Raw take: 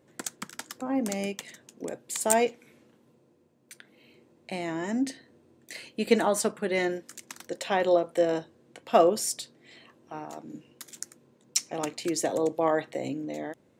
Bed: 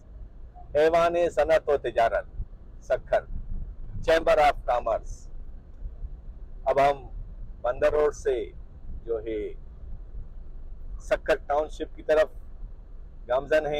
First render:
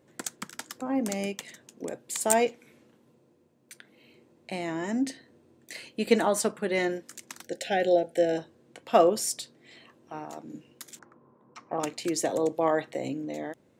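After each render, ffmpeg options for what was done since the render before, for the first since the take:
ffmpeg -i in.wav -filter_complex "[0:a]asplit=3[link_01][link_02][link_03];[link_01]afade=type=out:start_time=7.42:duration=0.02[link_04];[link_02]asuperstop=centerf=1100:order=20:qfactor=2,afade=type=in:start_time=7.42:duration=0.02,afade=type=out:start_time=8.37:duration=0.02[link_05];[link_03]afade=type=in:start_time=8.37:duration=0.02[link_06];[link_04][link_05][link_06]amix=inputs=3:normalize=0,asettb=1/sr,asplit=3[link_07][link_08][link_09];[link_07]atrim=end=10.994[link_10];[link_08]atrim=start=10.99:end=11.8,asetpts=PTS-STARTPTS,afade=type=in:duration=0.004:curve=qsin,afade=type=out:start_time=0.806:duration=0.004:curve=qsin,lowpass=frequency=1100:width_type=q:width=3.9[link_11];[link_09]atrim=start=11.796[link_12];[link_10][link_11]acrossfade=duration=0.004:curve1=hsin:curve2=qsin[link_13];[link_13][link_12]acrossfade=duration=0.004:curve1=qsin:curve2=hsin" out.wav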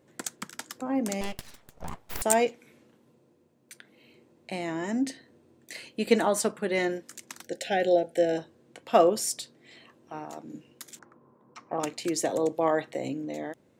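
ffmpeg -i in.wav -filter_complex "[0:a]asettb=1/sr,asplit=3[link_01][link_02][link_03];[link_01]atrim=end=1.214[link_04];[link_02]atrim=start=1.21:end=2.22,asetpts=PTS-STARTPTS,afade=type=in:duration=0.004:curve=qsin,afade=type=out:start_time=1.006:duration=0.004:curve=qsin,aeval=exprs='abs(val(0))':channel_layout=same[link_05];[link_03]atrim=start=2.216[link_06];[link_04][link_05]acrossfade=duration=0.004:curve1=hsin:curve2=qsin[link_07];[link_07][link_06]acrossfade=duration=0.004:curve1=qsin:curve2=hsin" out.wav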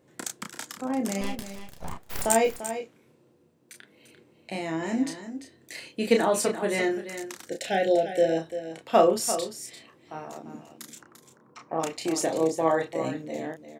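ffmpeg -i in.wav -filter_complex "[0:a]asplit=2[link_01][link_02];[link_02]adelay=31,volume=-4.5dB[link_03];[link_01][link_03]amix=inputs=2:normalize=0,aecho=1:1:344:0.282" out.wav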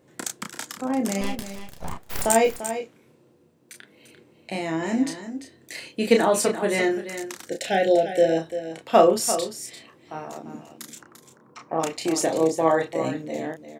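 ffmpeg -i in.wav -af "volume=3.5dB,alimiter=limit=-3dB:level=0:latency=1" out.wav

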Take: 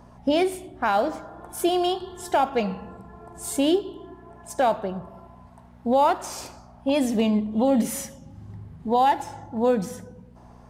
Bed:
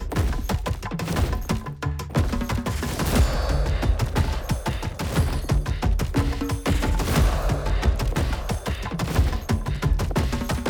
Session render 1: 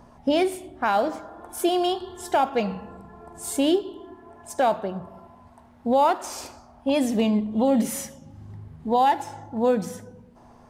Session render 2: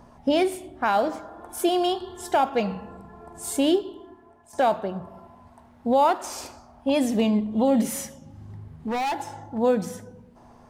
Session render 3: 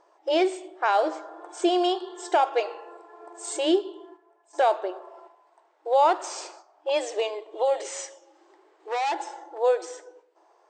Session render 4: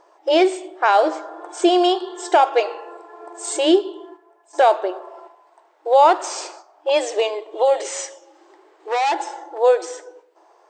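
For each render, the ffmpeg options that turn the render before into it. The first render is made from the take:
ffmpeg -i in.wav -af "bandreject=frequency=60:width_type=h:width=4,bandreject=frequency=120:width_type=h:width=4,bandreject=frequency=180:width_type=h:width=4" out.wav
ffmpeg -i in.wav -filter_complex "[0:a]asettb=1/sr,asplit=3[link_01][link_02][link_03];[link_01]atrim=end=7.894[link_04];[link_02]atrim=start=7.89:end=9.58,asetpts=PTS-STARTPTS,afade=type=in:duration=0.004:curve=qsin,afade=type=out:start_time=1.686:duration=0.004:curve=qsin,asoftclip=type=hard:threshold=-24dB[link_05];[link_03]atrim=start=9.576[link_06];[link_04][link_05]acrossfade=duration=0.004:curve1=hsin:curve2=qsin[link_07];[link_07][link_06]acrossfade=duration=0.004:curve1=qsin:curve2=hsin,asplit=2[link_08][link_09];[link_08]atrim=end=4.53,asetpts=PTS-STARTPTS,afade=type=out:start_time=3.8:duration=0.73:silence=0.199526[link_10];[link_09]atrim=start=4.53,asetpts=PTS-STARTPTS,afade=type=in:duration=0.004:curve=hsin:silence=0.199526[link_11];[link_10][link_11]concat=n=2:v=0:a=1" out.wav
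ffmpeg -i in.wav -af "agate=range=-7dB:threshold=-47dB:ratio=16:detection=peak,afftfilt=real='re*between(b*sr/4096,310,8600)':imag='im*between(b*sr/4096,310,8600)':win_size=4096:overlap=0.75" out.wav
ffmpeg -i in.wav -af "volume=7dB" out.wav

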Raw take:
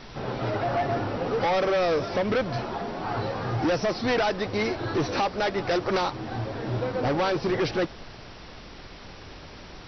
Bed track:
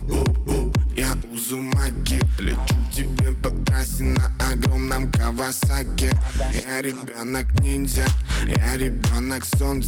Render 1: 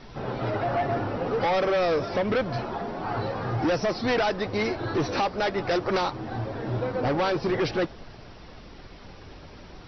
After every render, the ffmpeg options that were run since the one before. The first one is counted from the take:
ffmpeg -i in.wav -af "afftdn=noise_reduction=6:noise_floor=-44" out.wav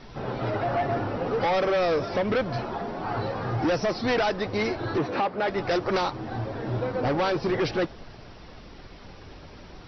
ffmpeg -i in.wav -filter_complex "[0:a]asplit=3[link_01][link_02][link_03];[link_01]afade=type=out:start_time=4.98:duration=0.02[link_04];[link_02]highpass=130,lowpass=2700,afade=type=in:start_time=4.98:duration=0.02,afade=type=out:start_time=5.47:duration=0.02[link_05];[link_03]afade=type=in:start_time=5.47:duration=0.02[link_06];[link_04][link_05][link_06]amix=inputs=3:normalize=0" out.wav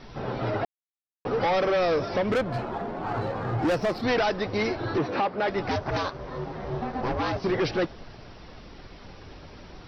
ffmpeg -i in.wav -filter_complex "[0:a]asettb=1/sr,asplit=3[link_01][link_02][link_03];[link_01]atrim=end=2.324[link_04];[link_02]atrim=start=2.32:end=4.03,asetpts=PTS-STARTPTS,afade=type=in:duration=0.004:curve=qsin,afade=type=out:start_time=1.706:duration=0.004:curve=qsin,adynamicsmooth=sensitivity=5:basefreq=2600[link_05];[link_03]atrim=start=4.026[link_06];[link_04][link_05]acrossfade=duration=0.004:curve1=hsin:curve2=qsin[link_07];[link_07][link_06]acrossfade=duration=0.004:curve1=qsin:curve2=hsin,asettb=1/sr,asplit=3[link_08][link_09][link_10];[link_08]atrim=end=5.694[link_11];[link_09]atrim=start=5.69:end=7.44,asetpts=PTS-STARTPTS,afade=type=in:duration=0.004:curve=qsin,afade=type=out:start_time=1.746:duration=0.004:curve=qsin,aeval=exprs='val(0)*sin(2*PI*260*n/s)':channel_layout=same[link_12];[link_10]atrim=start=7.436[link_13];[link_11][link_12]acrossfade=duration=0.004:curve1=hsin:curve2=qsin[link_14];[link_14][link_13]acrossfade=duration=0.004:curve1=qsin:curve2=hsin,asplit=3[link_15][link_16][link_17];[link_15]atrim=end=0.65,asetpts=PTS-STARTPTS,afade=type=out:start_time=0.646:duration=0.004:curve=hsin[link_18];[link_16]atrim=start=0.65:end=1.25,asetpts=PTS-STARTPTS,volume=0[link_19];[link_17]atrim=start=1.25,asetpts=PTS-STARTPTS,afade=type=in:duration=0.004:curve=hsin[link_20];[link_18][link_19][link_20]concat=n=3:v=0:a=1" out.wav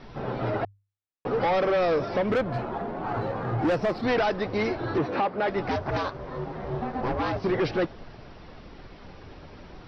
ffmpeg -i in.wav -af "aemphasis=mode=reproduction:type=50fm,bandreject=frequency=50:width_type=h:width=6,bandreject=frequency=100:width_type=h:width=6" out.wav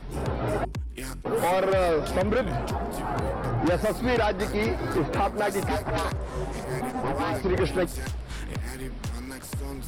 ffmpeg -i in.wav -i bed.wav -filter_complex "[1:a]volume=-13dB[link_01];[0:a][link_01]amix=inputs=2:normalize=0" out.wav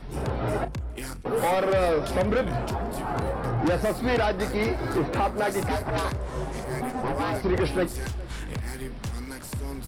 ffmpeg -i in.wav -filter_complex "[0:a]asplit=2[link_01][link_02];[link_02]adelay=33,volume=-13.5dB[link_03];[link_01][link_03]amix=inputs=2:normalize=0,asplit=2[link_04][link_05];[link_05]adelay=414,volume=-20dB,highshelf=frequency=4000:gain=-9.32[link_06];[link_04][link_06]amix=inputs=2:normalize=0" out.wav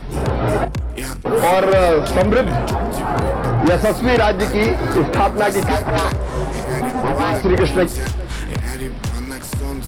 ffmpeg -i in.wav -af "volume=9.5dB" out.wav

